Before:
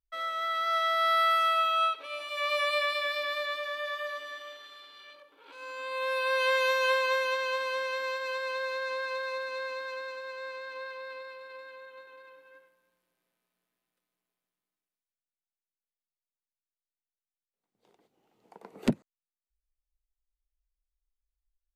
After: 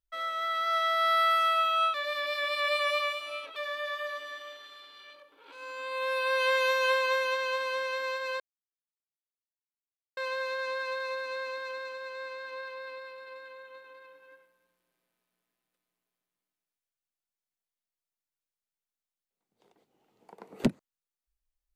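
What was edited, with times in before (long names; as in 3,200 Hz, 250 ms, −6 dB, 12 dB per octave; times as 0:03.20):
0:01.94–0:03.56: reverse
0:08.40: splice in silence 1.77 s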